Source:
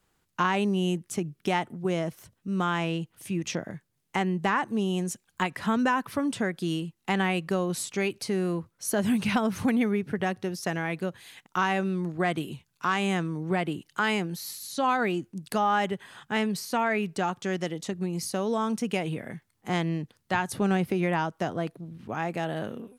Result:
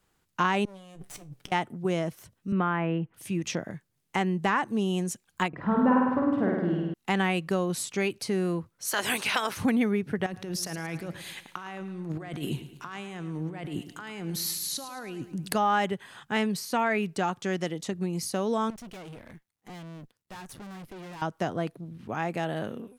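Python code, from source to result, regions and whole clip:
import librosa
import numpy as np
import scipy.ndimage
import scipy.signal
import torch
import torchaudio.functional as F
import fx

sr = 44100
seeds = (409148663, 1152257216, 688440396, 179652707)

y = fx.chain(x, sr, fx.lower_of_two(delay_ms=6.9),
    fx.over_compress(threshold_db=-43.0, ratio=-1.0),
    fx.comb_fb(f0_hz=64.0, decay_s=0.26, harmonics='all', damping=0.0, mix_pct=50), at=(0.65, 1.52))
y = fx.chain(y, sr, fx.lowpass(hz=2200.0, slope=24),
    fx.band_squash(depth_pct=70), at=(2.52, 3.14))
y = fx.chain(y, sr, fx.lowpass(hz=1100.0, slope=12),
    fx.room_flutter(wall_m=8.8, rt60_s=1.3), at=(5.48, 6.94))
y = fx.spec_clip(y, sr, under_db=18, at=(8.85, 9.56), fade=0.02)
y = fx.highpass(y, sr, hz=710.0, slope=6, at=(8.85, 9.56), fade=0.02)
y = fx.chain(y, sr, fx.over_compress(threshold_db=-36.0, ratio=-1.0),
    fx.echo_feedback(ms=109, feedback_pct=47, wet_db=-13), at=(10.26, 15.55))
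y = fx.chain(y, sr, fx.law_mismatch(coded='A'),
    fx.tube_stage(drive_db=41.0, bias=0.75), at=(18.7, 21.22))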